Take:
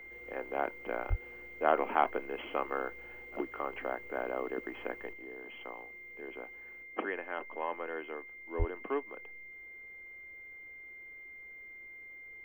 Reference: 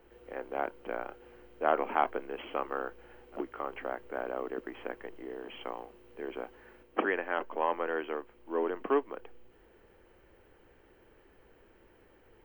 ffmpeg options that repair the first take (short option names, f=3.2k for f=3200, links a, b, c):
-filter_complex "[0:a]bandreject=f=2.1k:w=30,asplit=3[a][b][c];[a]afade=t=out:st=1.09:d=0.02[d];[b]highpass=f=140:w=0.5412,highpass=f=140:w=1.3066,afade=t=in:st=1.09:d=0.02,afade=t=out:st=1.21:d=0.02[e];[c]afade=t=in:st=1.21:d=0.02[f];[d][e][f]amix=inputs=3:normalize=0,asplit=3[g][h][i];[g]afade=t=out:st=8.58:d=0.02[j];[h]highpass=f=140:w=0.5412,highpass=f=140:w=1.3066,afade=t=in:st=8.58:d=0.02,afade=t=out:st=8.7:d=0.02[k];[i]afade=t=in:st=8.7:d=0.02[l];[j][k][l]amix=inputs=3:normalize=0,asetnsamples=n=441:p=0,asendcmd='5.13 volume volume 6.5dB',volume=0dB"